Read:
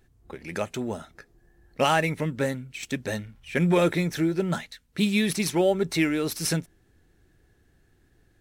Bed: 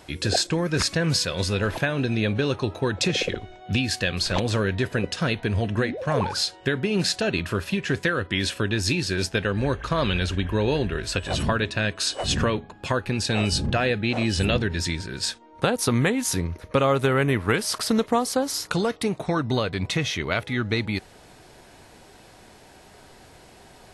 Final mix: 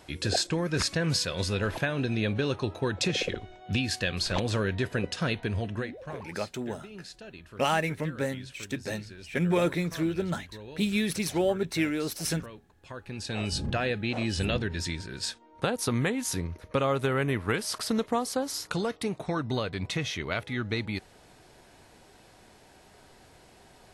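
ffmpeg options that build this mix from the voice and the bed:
-filter_complex "[0:a]adelay=5800,volume=-4dB[a];[1:a]volume=11dB,afade=t=out:st=5.35:d=0.92:silence=0.141254,afade=t=in:st=12.84:d=0.83:silence=0.16788[b];[a][b]amix=inputs=2:normalize=0"

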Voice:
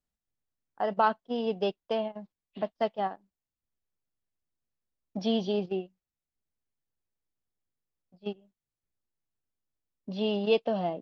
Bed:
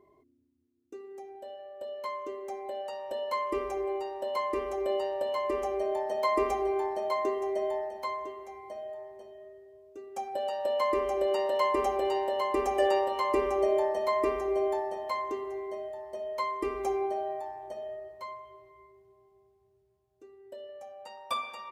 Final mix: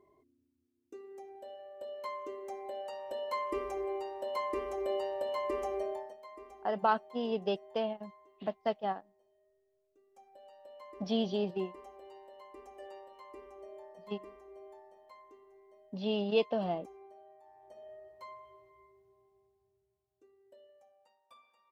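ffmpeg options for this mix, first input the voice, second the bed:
-filter_complex "[0:a]adelay=5850,volume=-3.5dB[a];[1:a]volume=13.5dB,afade=t=out:st=5.78:d=0.39:silence=0.105925,afade=t=in:st=17.4:d=1.05:silence=0.133352,afade=t=out:st=19.21:d=1.99:silence=0.0794328[b];[a][b]amix=inputs=2:normalize=0"

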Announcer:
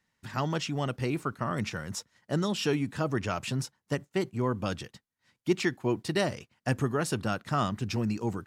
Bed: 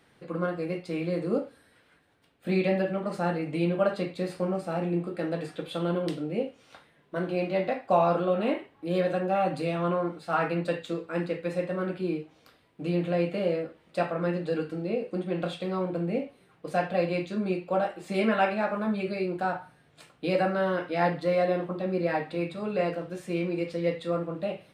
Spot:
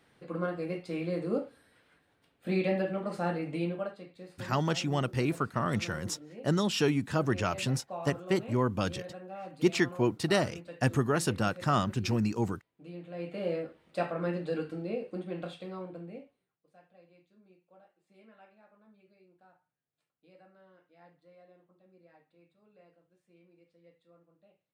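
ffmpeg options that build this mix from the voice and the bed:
-filter_complex "[0:a]adelay=4150,volume=1dB[a];[1:a]volume=9.5dB,afade=t=out:st=3.51:d=0.44:silence=0.211349,afade=t=in:st=13.11:d=0.46:silence=0.223872,afade=t=out:st=14.67:d=1.91:silence=0.0334965[b];[a][b]amix=inputs=2:normalize=0"

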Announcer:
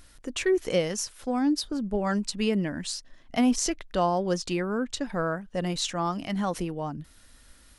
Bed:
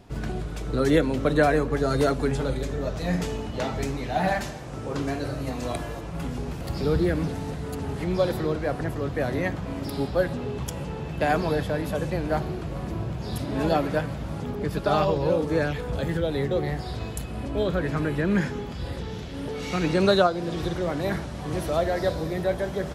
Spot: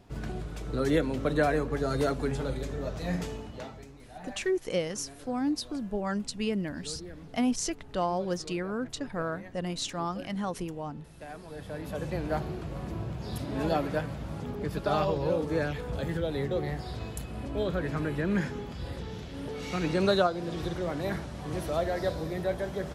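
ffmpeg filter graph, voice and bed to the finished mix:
-filter_complex "[0:a]adelay=4000,volume=-4.5dB[a];[1:a]volume=10dB,afade=t=out:st=3.16:d=0.69:silence=0.177828,afade=t=in:st=11.49:d=0.67:silence=0.16788[b];[a][b]amix=inputs=2:normalize=0"

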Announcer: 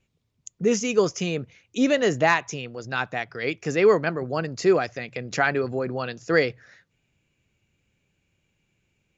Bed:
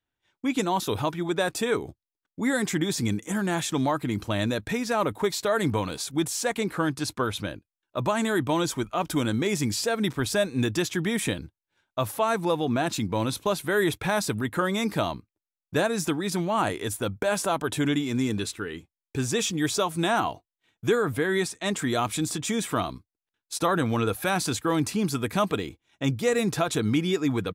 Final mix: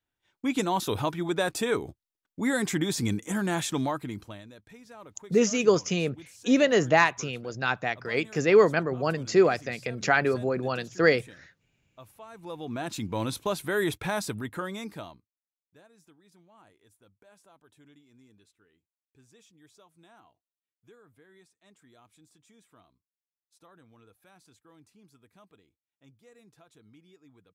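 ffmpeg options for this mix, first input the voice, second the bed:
-filter_complex "[0:a]adelay=4700,volume=-0.5dB[a];[1:a]volume=17.5dB,afade=t=out:st=3.65:d=0.78:silence=0.0891251,afade=t=in:st=12.33:d=0.89:silence=0.112202,afade=t=out:st=13.99:d=1.38:silence=0.0334965[b];[a][b]amix=inputs=2:normalize=0"

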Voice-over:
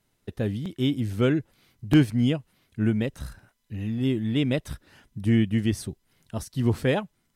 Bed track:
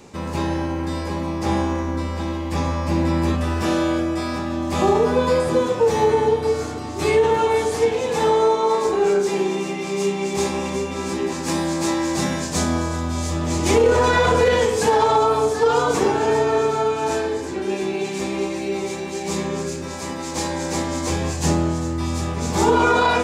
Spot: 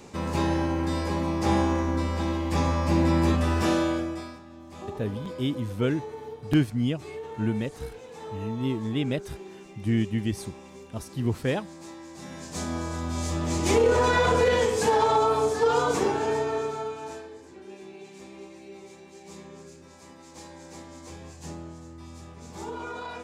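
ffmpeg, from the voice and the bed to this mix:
-filter_complex "[0:a]adelay=4600,volume=-3.5dB[a];[1:a]volume=14.5dB,afade=t=out:st=3.61:d=0.78:silence=0.105925,afade=t=in:st=12.19:d=1.07:silence=0.149624,afade=t=out:st=15.85:d=1.43:silence=0.177828[b];[a][b]amix=inputs=2:normalize=0"

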